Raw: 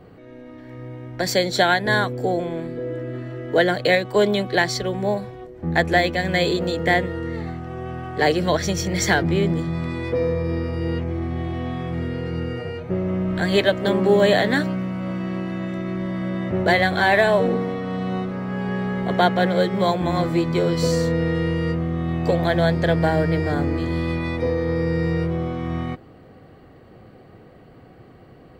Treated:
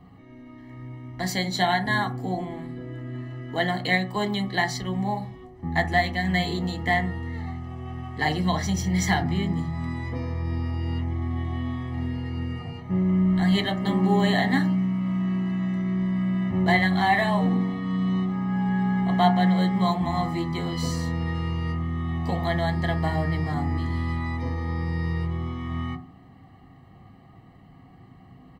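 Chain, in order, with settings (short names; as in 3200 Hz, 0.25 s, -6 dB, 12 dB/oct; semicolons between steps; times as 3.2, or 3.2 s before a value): comb 1 ms, depth 85%; on a send: reverb RT60 0.35 s, pre-delay 3 ms, DRR 3 dB; on the sum: gain -8 dB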